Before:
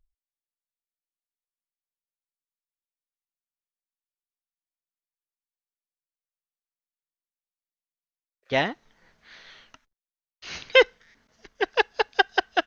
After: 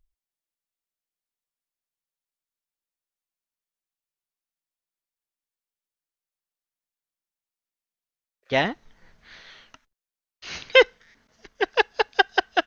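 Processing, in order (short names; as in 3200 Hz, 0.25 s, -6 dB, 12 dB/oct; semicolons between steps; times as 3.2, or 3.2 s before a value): 8.64–9.4 low shelf 120 Hz +10.5 dB; gain +1.5 dB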